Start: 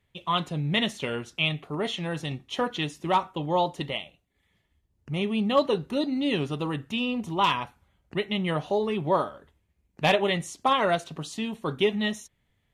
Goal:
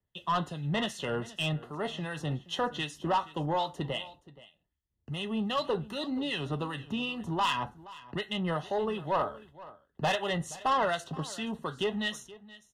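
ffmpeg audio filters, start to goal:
-filter_complex "[0:a]agate=range=0.2:threshold=0.00178:ratio=16:detection=peak,acrossover=split=130|560|1800[s0][s1][s2][s3];[s1]acompressor=threshold=0.0158:ratio=6[s4];[s3]flanger=delay=9.2:depth=4:regen=51:speed=1.4:shape=triangular[s5];[s0][s4][s2][s5]amix=inputs=4:normalize=0,acrossover=split=1500[s6][s7];[s6]aeval=exprs='val(0)*(1-0.7/2+0.7/2*cos(2*PI*2.6*n/s))':c=same[s8];[s7]aeval=exprs='val(0)*(1-0.7/2-0.7/2*cos(2*PI*2.6*n/s))':c=same[s9];[s8][s9]amix=inputs=2:normalize=0,asoftclip=type=tanh:threshold=0.0531,asuperstop=centerf=2300:order=8:qfactor=5.3,aecho=1:1:474:0.112,volume=1.58"

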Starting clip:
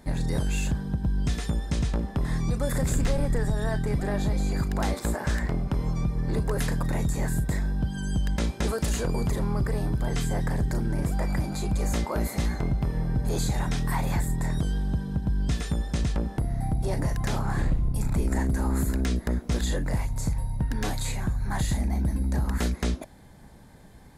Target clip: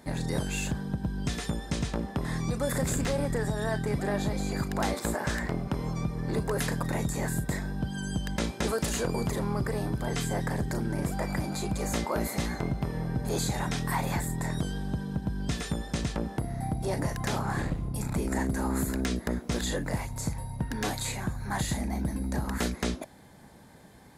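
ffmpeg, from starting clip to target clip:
-af "highpass=f=170:p=1,volume=1.12"

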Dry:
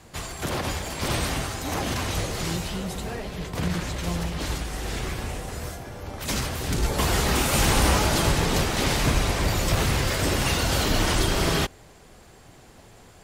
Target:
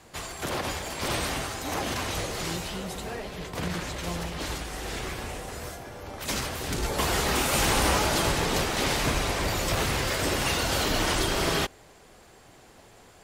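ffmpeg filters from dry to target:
-af "bass=f=250:g=-6,treble=f=4000:g=-1,volume=0.891"

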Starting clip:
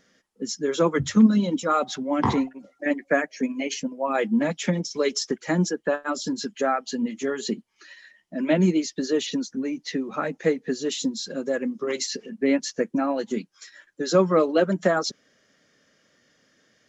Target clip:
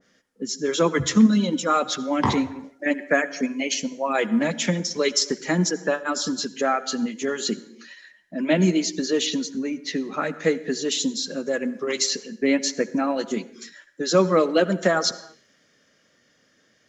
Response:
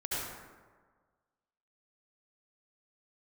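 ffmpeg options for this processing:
-filter_complex "[0:a]asplit=2[s0][s1];[1:a]atrim=start_sample=2205,afade=t=out:st=0.39:d=0.01,atrim=end_sample=17640[s2];[s1][s2]afir=irnorm=-1:irlink=0,volume=0.1[s3];[s0][s3]amix=inputs=2:normalize=0,adynamicequalizer=threshold=0.0141:dfrequency=1800:dqfactor=0.7:tfrequency=1800:tqfactor=0.7:attack=5:release=100:ratio=0.375:range=3:mode=boostabove:tftype=highshelf"

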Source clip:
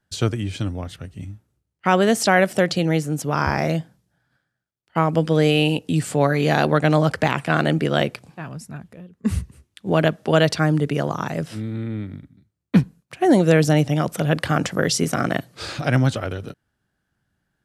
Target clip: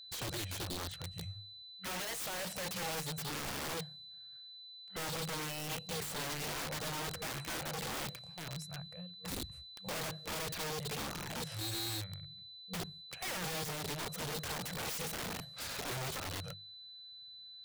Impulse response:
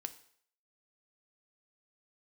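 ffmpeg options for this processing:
-af "afftfilt=real='re*(1-between(b*sr/4096,190,470))':imag='im*(1-between(b*sr/4096,190,470))':win_size=4096:overlap=0.75,asoftclip=type=hard:threshold=0.112,aeval=exprs='val(0)+0.00794*sin(2*PI*4000*n/s)':c=same,alimiter=limit=0.0631:level=0:latency=1:release=20,bandreject=f=50:t=h:w=6,bandreject=f=100:t=h:w=6,bandreject=f=150:t=h:w=6,bandreject=f=200:t=h:w=6,bandreject=f=250:t=h:w=6,bandreject=f=300:t=h:w=6,bandreject=f=350:t=h:w=6,bandreject=f=400:t=h:w=6,aeval=exprs='(mod(23.7*val(0)+1,2)-1)/23.7':c=same,volume=0.422"

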